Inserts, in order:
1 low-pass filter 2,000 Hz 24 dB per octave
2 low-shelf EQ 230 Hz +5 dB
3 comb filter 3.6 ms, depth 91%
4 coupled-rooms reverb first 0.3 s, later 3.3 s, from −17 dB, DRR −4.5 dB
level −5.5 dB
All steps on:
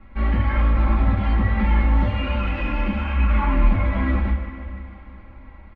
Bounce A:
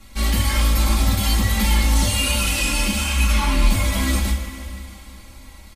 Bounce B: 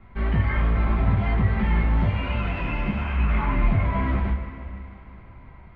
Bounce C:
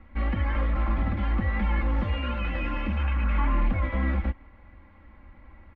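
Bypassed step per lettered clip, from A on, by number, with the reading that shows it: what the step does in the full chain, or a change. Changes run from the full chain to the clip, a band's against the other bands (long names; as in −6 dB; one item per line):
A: 1, 2 kHz band +5.0 dB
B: 3, change in integrated loudness −2.5 LU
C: 4, change in integrated loudness −6.0 LU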